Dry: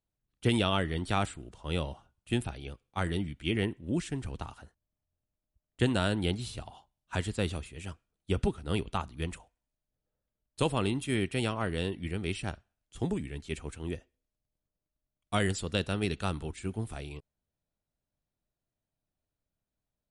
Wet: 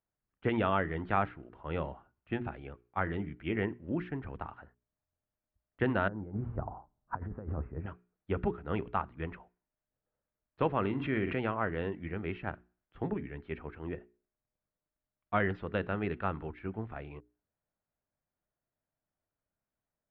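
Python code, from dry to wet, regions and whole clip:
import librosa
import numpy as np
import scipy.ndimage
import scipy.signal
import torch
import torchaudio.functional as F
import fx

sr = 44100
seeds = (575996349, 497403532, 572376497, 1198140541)

y = fx.chain(x, sr, fx.lowpass(hz=1300.0, slope=24),
    fx.low_shelf(hz=260.0, db=7.5),
    fx.over_compress(threshold_db=-31.0, ratio=-0.5), at=(6.08, 7.86))
y = fx.chain(y, sr, fx.notch(hz=820.0, q=7.3),
    fx.room_flutter(wall_m=7.7, rt60_s=0.2),
    fx.pre_swell(db_per_s=27.0), at=(10.8, 11.38))
y = scipy.signal.sosfilt(scipy.signal.cheby2(4, 70, 7600.0, 'lowpass', fs=sr, output='sos'), y)
y = fx.tilt_eq(y, sr, slope=2.0)
y = fx.hum_notches(y, sr, base_hz=60, count=7)
y = y * librosa.db_to_amplitude(2.0)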